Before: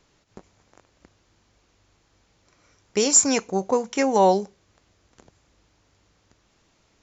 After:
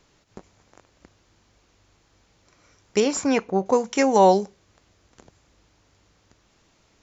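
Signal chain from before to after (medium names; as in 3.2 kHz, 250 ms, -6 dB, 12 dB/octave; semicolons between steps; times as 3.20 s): 3.00–3.66 s: low-pass 2.9 kHz 12 dB/octave; trim +2 dB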